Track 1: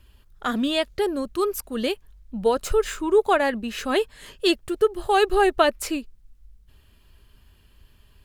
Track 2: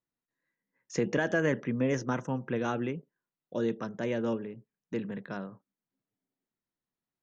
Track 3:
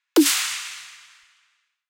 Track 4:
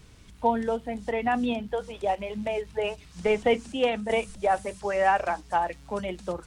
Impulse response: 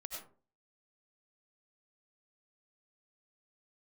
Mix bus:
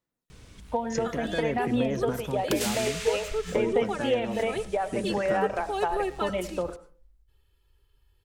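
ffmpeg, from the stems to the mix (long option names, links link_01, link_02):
-filter_complex "[0:a]aecho=1:1:2.3:0.96,adelay=600,volume=-17.5dB,asplit=2[link_01][link_02];[link_02]volume=-9dB[link_03];[1:a]acompressor=threshold=-32dB:ratio=6,aphaser=in_gain=1:out_gain=1:delay=1.2:decay=0.39:speed=0.57:type=sinusoidal,volume=2dB,asplit=2[link_04][link_05];[2:a]acompressor=threshold=-28dB:ratio=2,adelay=2350,volume=1.5dB[link_06];[3:a]acompressor=threshold=-28dB:ratio=6,adelay=300,volume=0.5dB,asplit=2[link_07][link_08];[link_08]volume=-7dB[link_09];[link_05]apad=whole_len=187299[link_10];[link_06][link_10]sidechaincompress=threshold=-35dB:ratio=4:attack=7.9:release=590[link_11];[4:a]atrim=start_sample=2205[link_12];[link_03][link_09]amix=inputs=2:normalize=0[link_13];[link_13][link_12]afir=irnorm=-1:irlink=0[link_14];[link_01][link_04][link_11][link_07][link_14]amix=inputs=5:normalize=0,equalizer=frequency=510:width=6.2:gain=4"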